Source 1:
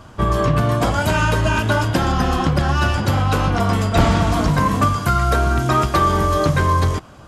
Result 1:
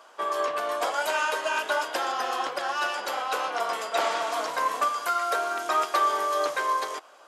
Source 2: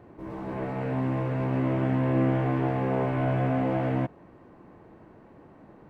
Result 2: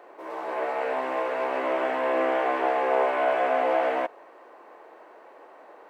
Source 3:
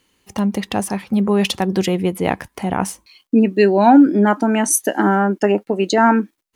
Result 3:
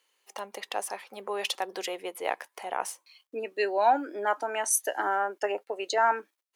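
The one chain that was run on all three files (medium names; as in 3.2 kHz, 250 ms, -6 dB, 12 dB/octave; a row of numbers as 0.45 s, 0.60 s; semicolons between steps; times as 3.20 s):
high-pass 480 Hz 24 dB/octave; peak normalisation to -12 dBFS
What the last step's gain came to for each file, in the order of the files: -6.0 dB, +8.0 dB, -8.5 dB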